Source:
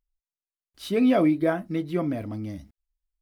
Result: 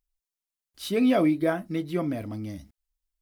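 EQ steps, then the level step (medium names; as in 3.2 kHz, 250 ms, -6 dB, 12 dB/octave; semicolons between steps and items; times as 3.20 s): treble shelf 3.6 kHz +6.5 dB; -1.5 dB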